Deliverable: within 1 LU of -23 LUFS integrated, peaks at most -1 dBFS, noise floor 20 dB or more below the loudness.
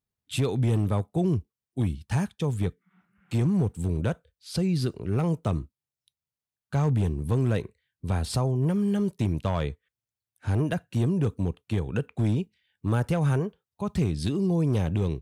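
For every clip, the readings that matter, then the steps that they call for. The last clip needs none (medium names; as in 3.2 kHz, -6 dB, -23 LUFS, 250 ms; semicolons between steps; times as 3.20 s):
clipped samples 0.9%; clipping level -17.5 dBFS; loudness -27.5 LUFS; peak level -17.5 dBFS; loudness target -23.0 LUFS
-> clip repair -17.5 dBFS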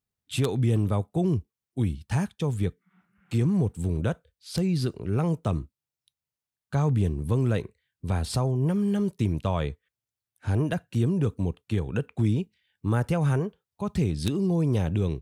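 clipped samples 0.0%; loudness -27.5 LUFS; peak level -8.5 dBFS; loudness target -23.0 LUFS
-> trim +4.5 dB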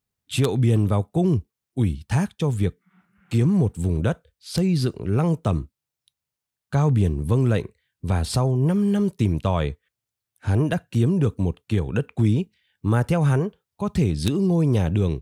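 loudness -23.0 LUFS; peak level -4.0 dBFS; noise floor -86 dBFS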